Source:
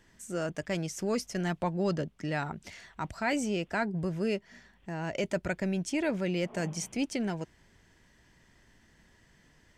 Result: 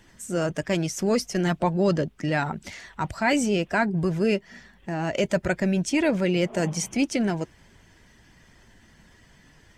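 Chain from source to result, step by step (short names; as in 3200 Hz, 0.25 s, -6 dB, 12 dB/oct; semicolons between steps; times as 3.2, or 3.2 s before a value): bin magnitudes rounded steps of 15 dB; gain +8 dB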